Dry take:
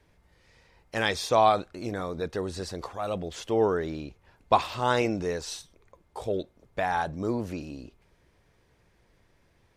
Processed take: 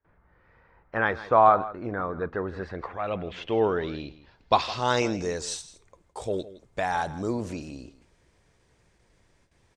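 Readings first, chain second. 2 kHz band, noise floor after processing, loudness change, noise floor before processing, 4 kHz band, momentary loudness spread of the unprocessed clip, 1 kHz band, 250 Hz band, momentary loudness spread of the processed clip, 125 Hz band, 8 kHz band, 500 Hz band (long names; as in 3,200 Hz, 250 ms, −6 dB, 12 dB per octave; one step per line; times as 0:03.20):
+2.0 dB, −65 dBFS, +1.5 dB, −66 dBFS, −0.5 dB, 15 LU, +2.5 dB, 0.0 dB, 17 LU, 0.0 dB, +2.0 dB, +1.0 dB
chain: noise gate with hold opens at −55 dBFS
low-pass filter sweep 1,400 Hz → 8,100 Hz, 0:02.25–0:05.48
on a send: single-tap delay 162 ms −16.5 dB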